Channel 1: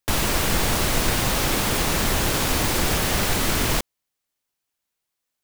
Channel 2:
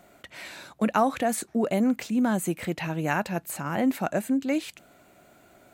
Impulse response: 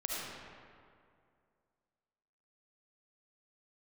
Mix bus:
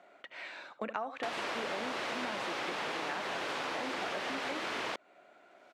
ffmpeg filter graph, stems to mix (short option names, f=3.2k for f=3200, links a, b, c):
-filter_complex "[0:a]acompressor=mode=upward:threshold=-34dB:ratio=2.5,adelay=1150,volume=-1dB[a];[1:a]volume=-2dB,asplit=2[b][c];[c]volume=-14dB,aecho=0:1:72:1[d];[a][b][d]amix=inputs=3:normalize=0,highpass=440,lowpass=3.1k,acompressor=threshold=-34dB:ratio=6"